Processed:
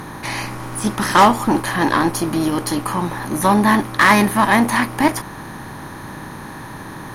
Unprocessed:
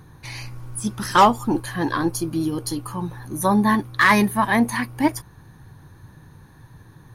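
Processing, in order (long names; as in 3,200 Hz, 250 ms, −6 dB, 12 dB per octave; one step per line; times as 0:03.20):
compressor on every frequency bin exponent 0.6
harmonic generator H 8 −29 dB, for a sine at −2 dBFS
level +1 dB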